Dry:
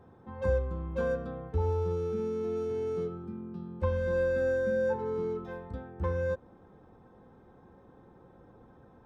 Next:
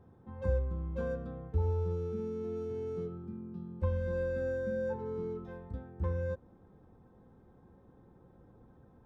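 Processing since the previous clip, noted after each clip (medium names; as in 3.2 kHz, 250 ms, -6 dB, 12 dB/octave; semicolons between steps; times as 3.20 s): bass shelf 300 Hz +9 dB; trim -8.5 dB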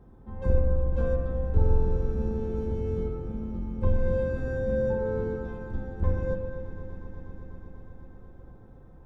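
octave divider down 2 oct, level +3 dB; echo with a slow build-up 122 ms, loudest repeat 5, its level -17 dB; reverberation RT60 1.6 s, pre-delay 44 ms, DRR 4.5 dB; trim +3 dB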